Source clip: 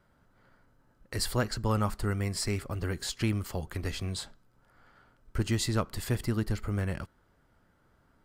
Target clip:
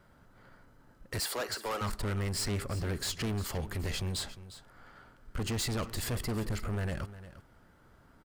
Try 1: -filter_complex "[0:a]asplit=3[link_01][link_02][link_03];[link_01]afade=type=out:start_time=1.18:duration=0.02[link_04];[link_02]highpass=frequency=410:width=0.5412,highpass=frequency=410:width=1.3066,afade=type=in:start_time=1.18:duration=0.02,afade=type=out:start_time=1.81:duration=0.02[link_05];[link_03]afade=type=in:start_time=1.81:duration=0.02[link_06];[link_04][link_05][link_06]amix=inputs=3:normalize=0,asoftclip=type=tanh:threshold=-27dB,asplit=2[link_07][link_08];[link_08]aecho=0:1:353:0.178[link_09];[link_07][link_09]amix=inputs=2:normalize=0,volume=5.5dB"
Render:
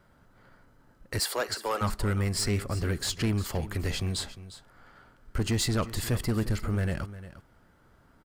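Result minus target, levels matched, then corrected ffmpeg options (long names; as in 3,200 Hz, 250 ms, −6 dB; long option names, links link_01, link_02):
soft clipping: distortion −6 dB
-filter_complex "[0:a]asplit=3[link_01][link_02][link_03];[link_01]afade=type=out:start_time=1.18:duration=0.02[link_04];[link_02]highpass=frequency=410:width=0.5412,highpass=frequency=410:width=1.3066,afade=type=in:start_time=1.18:duration=0.02,afade=type=out:start_time=1.81:duration=0.02[link_05];[link_03]afade=type=in:start_time=1.81:duration=0.02[link_06];[link_04][link_05][link_06]amix=inputs=3:normalize=0,asoftclip=type=tanh:threshold=-36dB,asplit=2[link_07][link_08];[link_08]aecho=0:1:353:0.178[link_09];[link_07][link_09]amix=inputs=2:normalize=0,volume=5.5dB"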